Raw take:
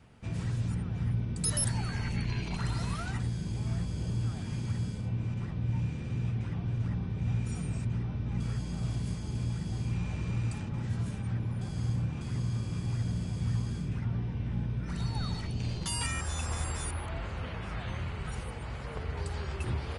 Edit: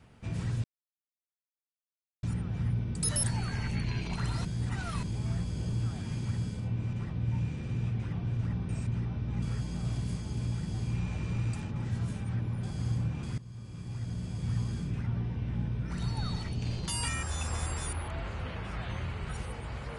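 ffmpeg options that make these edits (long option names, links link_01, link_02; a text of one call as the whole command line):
ffmpeg -i in.wav -filter_complex "[0:a]asplit=6[link_01][link_02][link_03][link_04][link_05][link_06];[link_01]atrim=end=0.64,asetpts=PTS-STARTPTS,afade=type=out:start_time=0.636:duration=0.004:curve=hsin,apad=pad_dur=1.59[link_07];[link_02]atrim=start=0.64:end=2.862,asetpts=PTS-STARTPTS,afade=type=in:duration=0.004:curve=hsin[link_08];[link_03]atrim=start=2.858:end=3.442,asetpts=PTS-STARTPTS,areverse[link_09];[link_04]atrim=start=3.438:end=7.102[link_10];[link_05]atrim=start=7.668:end=12.36,asetpts=PTS-STARTPTS,afade=type=out:start_time=4.688:duration=0.004:curve=hsin:silence=0.125893[link_11];[link_06]atrim=start=12.36,asetpts=PTS-STARTPTS,afade=type=in:duration=1.29:silence=0.125893[link_12];[link_07][link_08]concat=n=2:v=0:a=1[link_13];[link_13][link_09]acrossfade=duration=0.004:curve1=hsin:curve2=hsin[link_14];[link_14][link_10]acrossfade=duration=0.004:curve1=hsin:curve2=hsin[link_15];[link_11][link_12]concat=n=2:v=0:a=1[link_16];[link_15][link_16]acrossfade=duration=0.004:curve1=hsin:curve2=hsin" out.wav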